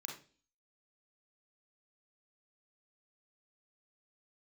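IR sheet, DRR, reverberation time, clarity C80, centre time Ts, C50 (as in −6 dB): −1.0 dB, non-exponential decay, 11.5 dB, 31 ms, 5.0 dB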